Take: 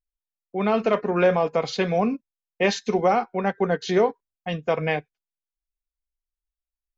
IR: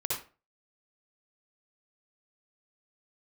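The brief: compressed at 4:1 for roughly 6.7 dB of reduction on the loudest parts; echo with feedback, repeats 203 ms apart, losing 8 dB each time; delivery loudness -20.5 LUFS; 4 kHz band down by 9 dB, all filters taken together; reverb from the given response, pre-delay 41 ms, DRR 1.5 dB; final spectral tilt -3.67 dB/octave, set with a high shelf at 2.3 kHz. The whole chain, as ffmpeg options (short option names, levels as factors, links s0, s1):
-filter_complex "[0:a]highshelf=f=2300:g=-4.5,equalizer=f=4000:t=o:g=-7.5,acompressor=threshold=0.0708:ratio=4,aecho=1:1:203|406|609|812|1015:0.398|0.159|0.0637|0.0255|0.0102,asplit=2[s0][s1];[1:a]atrim=start_sample=2205,adelay=41[s2];[s1][s2]afir=irnorm=-1:irlink=0,volume=0.447[s3];[s0][s3]amix=inputs=2:normalize=0,volume=1.88"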